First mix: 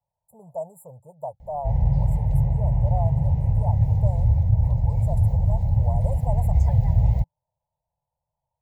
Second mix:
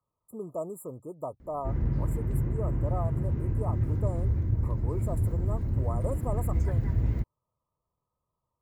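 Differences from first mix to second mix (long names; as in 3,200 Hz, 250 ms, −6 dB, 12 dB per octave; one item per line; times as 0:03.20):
background −8.0 dB
master: remove drawn EQ curve 160 Hz 0 dB, 330 Hz −28 dB, 530 Hz 0 dB, 850 Hz +10 dB, 1,300 Hz −29 dB, 1,900 Hz −10 dB, 3,700 Hz −3 dB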